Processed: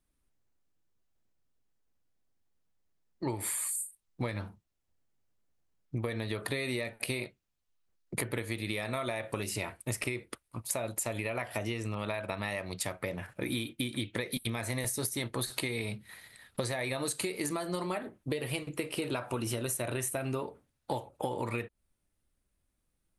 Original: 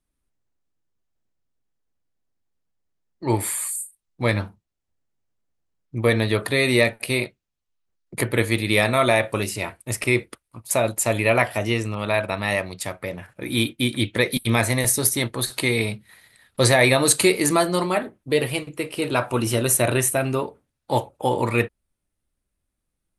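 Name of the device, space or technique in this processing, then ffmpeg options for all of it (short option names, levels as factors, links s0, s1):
serial compression, leveller first: -af "acompressor=threshold=0.0891:ratio=6,acompressor=threshold=0.0282:ratio=6"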